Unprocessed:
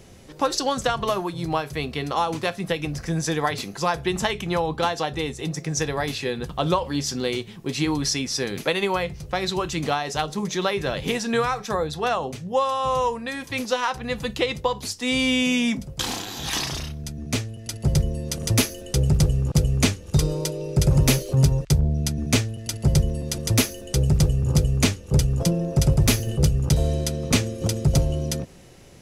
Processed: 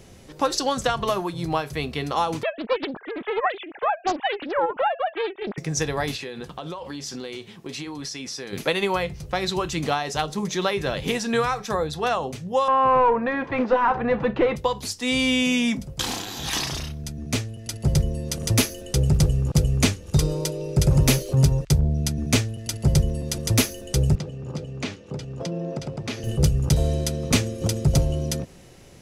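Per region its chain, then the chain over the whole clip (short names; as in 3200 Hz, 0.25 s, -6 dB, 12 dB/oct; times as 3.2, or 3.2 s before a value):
2.43–5.58 sine-wave speech + Doppler distortion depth 0.99 ms
6.16–8.53 HPF 230 Hz 6 dB/oct + high shelf 10000 Hz -6.5 dB + compressor 12:1, threshold -29 dBFS
12.68–14.56 overdrive pedal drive 23 dB, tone 1000 Hz, clips at -7.5 dBFS + LPF 1800 Hz
24.15–26.24 compressor 5:1, threshold -22 dBFS + BPF 180–4200 Hz
whole clip: dry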